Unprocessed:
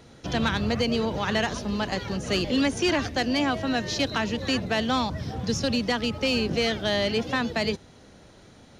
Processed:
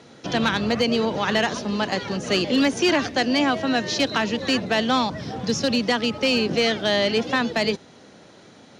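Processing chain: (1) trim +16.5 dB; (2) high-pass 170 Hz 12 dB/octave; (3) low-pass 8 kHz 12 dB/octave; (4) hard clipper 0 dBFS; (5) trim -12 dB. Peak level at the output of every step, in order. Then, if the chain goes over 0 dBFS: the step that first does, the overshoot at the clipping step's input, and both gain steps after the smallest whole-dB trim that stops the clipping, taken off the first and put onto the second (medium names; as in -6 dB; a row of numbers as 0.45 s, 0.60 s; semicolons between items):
+2.0 dBFS, +4.0 dBFS, +4.0 dBFS, 0.0 dBFS, -12.0 dBFS; step 1, 4.0 dB; step 1 +12.5 dB, step 5 -8 dB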